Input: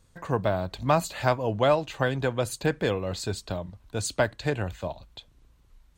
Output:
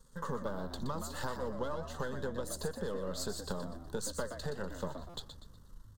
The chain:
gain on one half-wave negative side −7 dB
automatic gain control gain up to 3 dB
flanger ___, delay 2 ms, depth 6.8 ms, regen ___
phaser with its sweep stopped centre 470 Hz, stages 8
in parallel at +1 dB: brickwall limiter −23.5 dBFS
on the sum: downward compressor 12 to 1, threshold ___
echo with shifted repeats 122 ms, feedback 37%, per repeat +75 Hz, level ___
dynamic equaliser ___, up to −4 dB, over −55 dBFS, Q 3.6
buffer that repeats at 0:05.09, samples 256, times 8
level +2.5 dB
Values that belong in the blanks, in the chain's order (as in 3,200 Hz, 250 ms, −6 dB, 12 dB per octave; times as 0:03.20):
1.5 Hz, +76%, −36 dBFS, −8.5 dB, 130 Hz